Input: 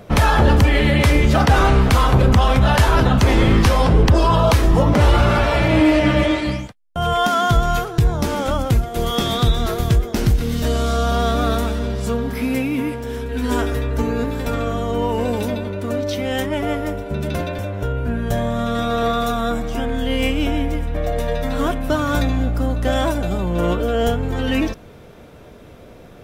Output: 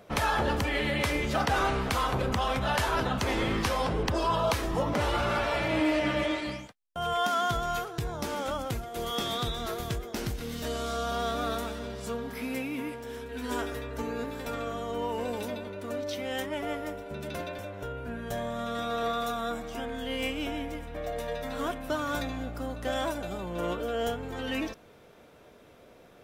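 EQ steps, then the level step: bass shelf 210 Hz -12 dB; -9.0 dB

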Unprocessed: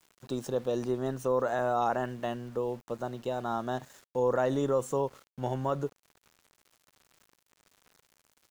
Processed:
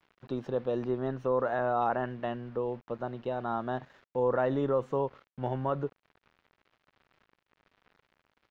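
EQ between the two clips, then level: distance through air 310 m; peaking EQ 2 kHz +3 dB 1.9 oct; 0.0 dB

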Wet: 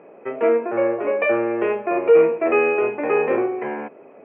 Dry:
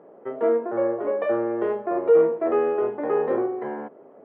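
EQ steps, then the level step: resonant low-pass 2.5 kHz, resonance Q 15; +3.0 dB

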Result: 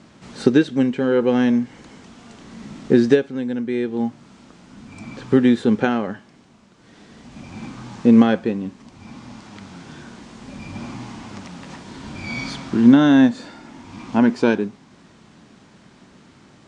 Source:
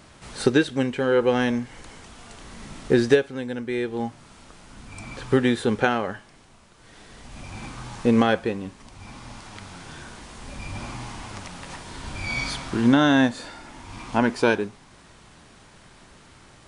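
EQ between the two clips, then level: high-pass 100 Hz 6 dB/octave; low-pass 7.7 kHz 24 dB/octave; peaking EQ 220 Hz +11 dB 1.5 oct; -2.0 dB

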